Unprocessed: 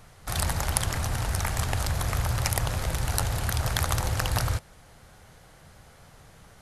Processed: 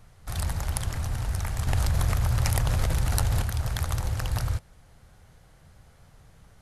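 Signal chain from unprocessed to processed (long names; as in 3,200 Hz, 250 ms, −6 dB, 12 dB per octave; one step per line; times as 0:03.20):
low-shelf EQ 160 Hz +9 dB
0:01.67–0:03.42: envelope flattener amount 100%
level −7 dB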